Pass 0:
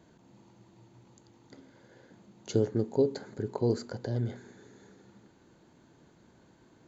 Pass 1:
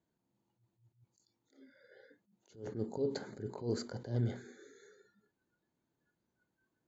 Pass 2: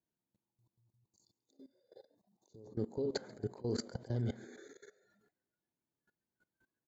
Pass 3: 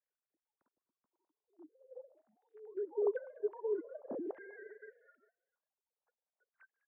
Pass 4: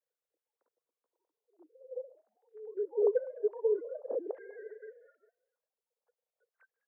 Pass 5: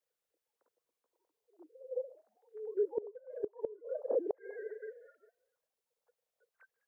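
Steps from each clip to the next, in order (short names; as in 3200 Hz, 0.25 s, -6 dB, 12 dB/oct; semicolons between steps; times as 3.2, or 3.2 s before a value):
spectral noise reduction 24 dB; limiter -23.5 dBFS, peak gain reduction 9.5 dB; attack slew limiter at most 160 dB/s
level quantiser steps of 20 dB; frequency-shifting echo 0.137 s, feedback 51%, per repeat +100 Hz, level -22.5 dB; spectral gain 0.48–2.77, 1200–3500 Hz -20 dB; gain +6 dB
sine-wave speech; LFO low-pass saw down 0.46 Hz 640–2000 Hz; frequency-shifting echo 0.199 s, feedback 31%, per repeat +110 Hz, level -22 dB; gain -1 dB
resonant high-pass 480 Hz, resonance Q 5.9; gain -3.5 dB
flipped gate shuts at -25 dBFS, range -24 dB; gain +3 dB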